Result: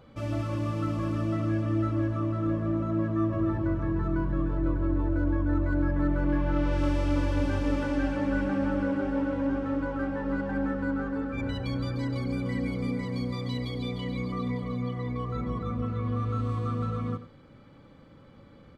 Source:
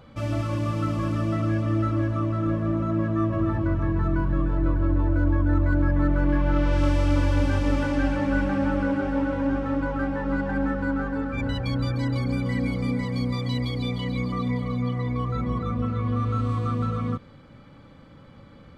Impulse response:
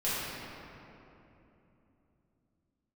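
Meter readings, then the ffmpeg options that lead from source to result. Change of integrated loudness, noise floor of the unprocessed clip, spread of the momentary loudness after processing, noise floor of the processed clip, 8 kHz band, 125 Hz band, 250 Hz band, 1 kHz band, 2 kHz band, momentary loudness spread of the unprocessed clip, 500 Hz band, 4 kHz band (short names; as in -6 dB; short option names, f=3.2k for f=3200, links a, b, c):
-4.0 dB, -49 dBFS, 5 LU, -53 dBFS, n/a, -5.0 dB, -3.0 dB, -5.0 dB, -5.0 dB, 5 LU, -3.0 dB, -5.5 dB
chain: -af "equalizer=f=390:w=1.4:g=4.5,aecho=1:1:92:0.2,volume=-5.5dB"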